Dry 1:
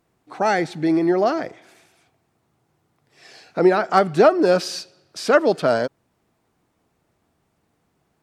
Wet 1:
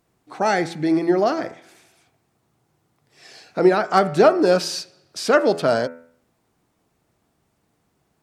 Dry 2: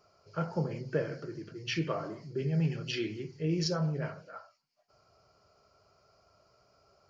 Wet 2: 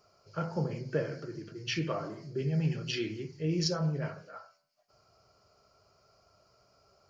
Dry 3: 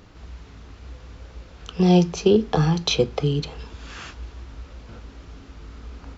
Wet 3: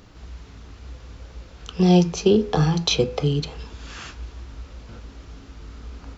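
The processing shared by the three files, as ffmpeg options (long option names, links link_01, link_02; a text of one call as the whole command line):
ffmpeg -i in.wav -af "bass=frequency=250:gain=1,treble=frequency=4000:gain=3,bandreject=frequency=83.15:width_type=h:width=4,bandreject=frequency=166.3:width_type=h:width=4,bandreject=frequency=249.45:width_type=h:width=4,bandreject=frequency=332.6:width_type=h:width=4,bandreject=frequency=415.75:width_type=h:width=4,bandreject=frequency=498.9:width_type=h:width=4,bandreject=frequency=582.05:width_type=h:width=4,bandreject=frequency=665.2:width_type=h:width=4,bandreject=frequency=748.35:width_type=h:width=4,bandreject=frequency=831.5:width_type=h:width=4,bandreject=frequency=914.65:width_type=h:width=4,bandreject=frequency=997.8:width_type=h:width=4,bandreject=frequency=1080.95:width_type=h:width=4,bandreject=frequency=1164.1:width_type=h:width=4,bandreject=frequency=1247.25:width_type=h:width=4,bandreject=frequency=1330.4:width_type=h:width=4,bandreject=frequency=1413.55:width_type=h:width=4,bandreject=frequency=1496.7:width_type=h:width=4,bandreject=frequency=1579.85:width_type=h:width=4,bandreject=frequency=1663:width_type=h:width=4,bandreject=frequency=1746.15:width_type=h:width=4,bandreject=frequency=1829.3:width_type=h:width=4,bandreject=frequency=1912.45:width_type=h:width=4,bandreject=frequency=1995.6:width_type=h:width=4,bandreject=frequency=2078.75:width_type=h:width=4,bandreject=frequency=2161.9:width_type=h:width=4,bandreject=frequency=2245.05:width_type=h:width=4,bandreject=frequency=2328.2:width_type=h:width=4,bandreject=frequency=2411.35:width_type=h:width=4,bandreject=frequency=2494.5:width_type=h:width=4,bandreject=frequency=2577.65:width_type=h:width=4,bandreject=frequency=2660.8:width_type=h:width=4" out.wav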